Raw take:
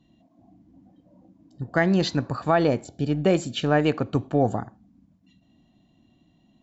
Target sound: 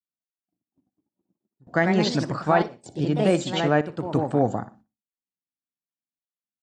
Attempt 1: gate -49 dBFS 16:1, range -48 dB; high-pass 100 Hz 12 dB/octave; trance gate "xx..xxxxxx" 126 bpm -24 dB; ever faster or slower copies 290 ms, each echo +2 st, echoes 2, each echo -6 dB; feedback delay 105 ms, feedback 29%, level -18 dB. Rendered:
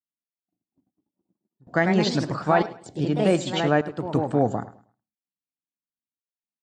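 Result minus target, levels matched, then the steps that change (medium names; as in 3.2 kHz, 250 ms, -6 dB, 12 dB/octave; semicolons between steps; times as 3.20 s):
echo 45 ms late
change: feedback delay 60 ms, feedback 29%, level -18 dB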